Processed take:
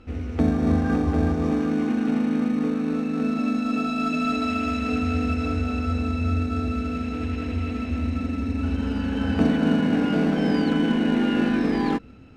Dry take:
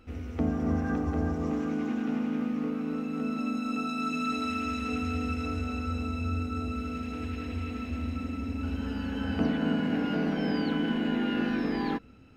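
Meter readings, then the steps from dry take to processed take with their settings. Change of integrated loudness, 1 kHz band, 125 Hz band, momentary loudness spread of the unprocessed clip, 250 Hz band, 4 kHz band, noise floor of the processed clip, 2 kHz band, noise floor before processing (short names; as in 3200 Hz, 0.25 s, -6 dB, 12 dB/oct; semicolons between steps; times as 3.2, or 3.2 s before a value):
+7.0 dB, +5.5 dB, +7.5 dB, 6 LU, +7.5 dB, +4.5 dB, -31 dBFS, +5.0 dB, -38 dBFS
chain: in parallel at -11.5 dB: sample-and-hold 22×; on the sum: air absorption 58 m; gain +5.5 dB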